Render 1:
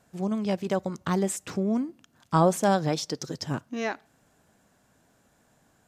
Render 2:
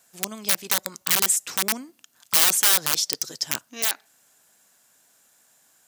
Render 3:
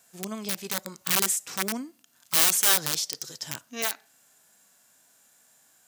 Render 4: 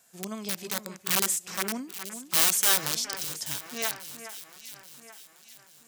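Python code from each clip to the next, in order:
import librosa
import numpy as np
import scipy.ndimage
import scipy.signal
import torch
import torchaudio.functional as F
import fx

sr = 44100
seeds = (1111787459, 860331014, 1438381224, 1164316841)

y1 = (np.mod(10.0 ** (19.0 / 20.0) * x + 1.0, 2.0) - 1.0) / 10.0 ** (19.0 / 20.0)
y1 = fx.tilt_eq(y1, sr, slope=4.5)
y1 = y1 * 10.0 ** (-1.5 / 20.0)
y2 = fx.hpss(y1, sr, part='percussive', gain_db=-13)
y2 = y2 * 10.0 ** (3.0 / 20.0)
y3 = fx.echo_alternate(y2, sr, ms=416, hz=2400.0, feedback_pct=66, wet_db=-10.0)
y3 = y3 * 10.0 ** (-1.5 / 20.0)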